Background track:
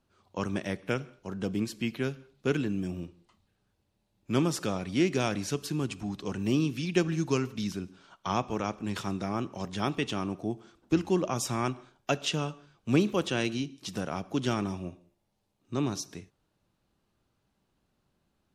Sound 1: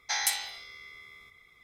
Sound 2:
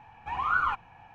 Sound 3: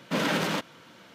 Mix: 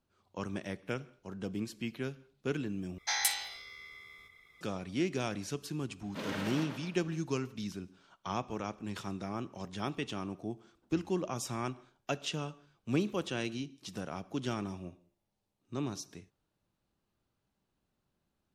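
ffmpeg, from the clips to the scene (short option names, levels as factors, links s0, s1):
-filter_complex "[0:a]volume=0.473[s0];[3:a]asplit=2[s1][s2];[s2]adelay=123,lowpass=f=3800:p=1,volume=0.668,asplit=2[s3][s4];[s4]adelay=123,lowpass=f=3800:p=1,volume=0.51,asplit=2[s5][s6];[s6]adelay=123,lowpass=f=3800:p=1,volume=0.51,asplit=2[s7][s8];[s8]adelay=123,lowpass=f=3800:p=1,volume=0.51,asplit=2[s9][s10];[s10]adelay=123,lowpass=f=3800:p=1,volume=0.51,asplit=2[s11][s12];[s12]adelay=123,lowpass=f=3800:p=1,volume=0.51,asplit=2[s13][s14];[s14]adelay=123,lowpass=f=3800:p=1,volume=0.51[s15];[s1][s3][s5][s7][s9][s11][s13][s15]amix=inputs=8:normalize=0[s16];[s0]asplit=2[s17][s18];[s17]atrim=end=2.984[s19];[1:a]atrim=end=1.63,asetpts=PTS-STARTPTS,volume=0.794[s20];[s18]atrim=start=4.606[s21];[s16]atrim=end=1.14,asetpts=PTS-STARTPTS,volume=0.211,afade=t=in:d=0.004:c=hsin,afade=t=out:st=1.136:d=0.004:c=hsin,adelay=6040[s22];[s19][s20]acrossfade=d=0.004:c1=hsin:c2=hsin[s23];[s23][s21]acrossfade=d=0.004:c1=hsin:c2=hsin[s24];[s24][s22]amix=inputs=2:normalize=0"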